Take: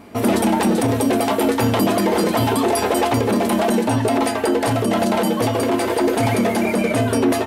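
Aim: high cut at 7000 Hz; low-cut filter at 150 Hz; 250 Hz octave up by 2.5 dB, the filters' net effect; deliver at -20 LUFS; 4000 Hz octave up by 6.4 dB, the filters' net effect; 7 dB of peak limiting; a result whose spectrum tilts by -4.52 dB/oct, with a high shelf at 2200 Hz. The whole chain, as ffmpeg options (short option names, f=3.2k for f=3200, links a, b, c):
-af "highpass=150,lowpass=7k,equalizer=f=250:t=o:g=3.5,highshelf=f=2.2k:g=5.5,equalizer=f=4k:t=o:g=3.5,alimiter=limit=-11.5dB:level=0:latency=1"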